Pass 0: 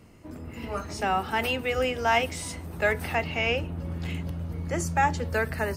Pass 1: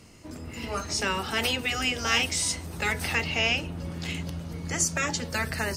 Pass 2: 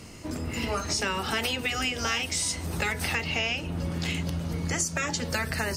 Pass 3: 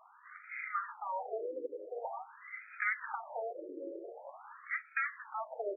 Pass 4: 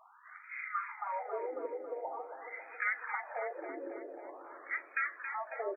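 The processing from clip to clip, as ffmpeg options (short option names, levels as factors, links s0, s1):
-af "afftfilt=real='re*lt(hypot(re,im),0.282)':imag='im*lt(hypot(re,im),0.282)':win_size=1024:overlap=0.75,equalizer=f=5800:w=0.57:g=12"
-af "acompressor=threshold=0.0224:ratio=5,volume=2.24"
-af "afftfilt=real='re*between(b*sr/1024,410*pow(1800/410,0.5+0.5*sin(2*PI*0.46*pts/sr))/1.41,410*pow(1800/410,0.5+0.5*sin(2*PI*0.46*pts/sr))*1.41)':imag='im*between(b*sr/1024,410*pow(1800/410,0.5+0.5*sin(2*PI*0.46*pts/sr))/1.41,410*pow(1800/410,0.5+0.5*sin(2*PI*0.46*pts/sr))*1.41)':win_size=1024:overlap=0.75,volume=0.841"
-af "aecho=1:1:274|548|822|1096|1370|1644:0.398|0.215|0.116|0.0627|0.0339|0.0183"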